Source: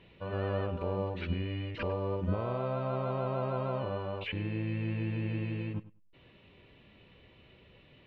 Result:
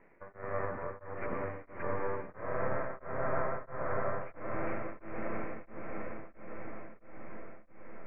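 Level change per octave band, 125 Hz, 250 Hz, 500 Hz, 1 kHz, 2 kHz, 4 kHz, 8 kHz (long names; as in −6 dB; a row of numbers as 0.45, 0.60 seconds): −12.0 dB, −7.0 dB, −2.0 dB, +1.0 dB, +2.0 dB, below −25 dB, can't be measured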